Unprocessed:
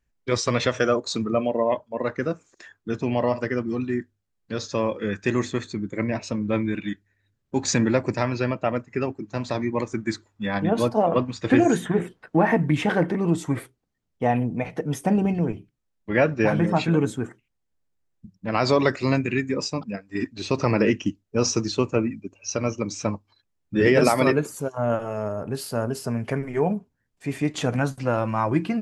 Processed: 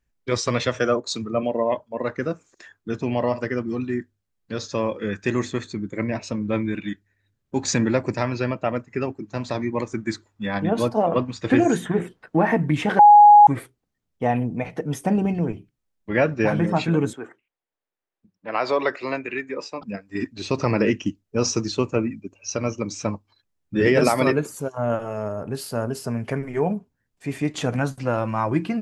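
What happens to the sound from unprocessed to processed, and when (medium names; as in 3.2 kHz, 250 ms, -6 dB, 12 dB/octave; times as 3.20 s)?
0.63–1.43 s: three bands expanded up and down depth 70%
12.99–13.47 s: bleep 830 Hz -6 dBFS
17.13–19.82 s: three-band isolator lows -20 dB, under 340 Hz, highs -13 dB, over 3.6 kHz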